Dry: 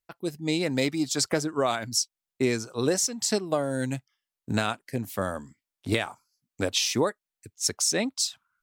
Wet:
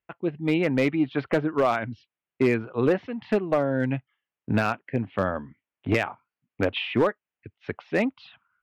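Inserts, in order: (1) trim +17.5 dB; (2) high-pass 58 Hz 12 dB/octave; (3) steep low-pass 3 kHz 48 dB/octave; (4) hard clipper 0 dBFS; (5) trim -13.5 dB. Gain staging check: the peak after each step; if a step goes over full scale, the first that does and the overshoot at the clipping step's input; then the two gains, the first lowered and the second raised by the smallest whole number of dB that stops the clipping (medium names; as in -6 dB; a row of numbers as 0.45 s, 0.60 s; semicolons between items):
+8.5 dBFS, +8.0 dBFS, +7.0 dBFS, 0.0 dBFS, -13.5 dBFS; step 1, 7.0 dB; step 1 +10.5 dB, step 5 -6.5 dB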